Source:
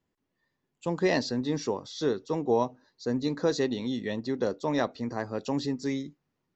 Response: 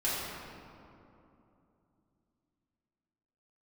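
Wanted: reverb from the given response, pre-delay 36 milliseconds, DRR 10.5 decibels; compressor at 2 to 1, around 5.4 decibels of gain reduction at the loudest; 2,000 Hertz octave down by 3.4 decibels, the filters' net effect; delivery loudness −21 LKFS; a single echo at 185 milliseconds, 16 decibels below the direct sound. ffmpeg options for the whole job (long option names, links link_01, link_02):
-filter_complex "[0:a]equalizer=frequency=2000:width_type=o:gain=-4,acompressor=threshold=-30dB:ratio=2,aecho=1:1:185:0.158,asplit=2[link_01][link_02];[1:a]atrim=start_sample=2205,adelay=36[link_03];[link_02][link_03]afir=irnorm=-1:irlink=0,volume=-19dB[link_04];[link_01][link_04]amix=inputs=2:normalize=0,volume=12.5dB"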